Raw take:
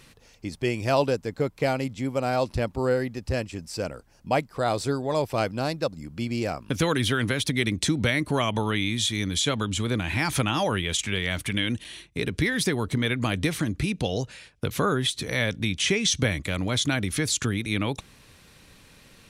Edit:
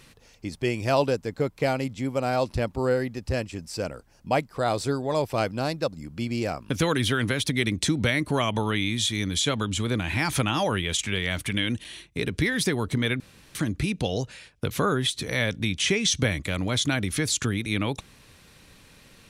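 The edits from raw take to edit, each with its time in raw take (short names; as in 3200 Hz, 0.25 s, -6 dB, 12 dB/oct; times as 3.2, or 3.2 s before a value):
13.2–13.55 room tone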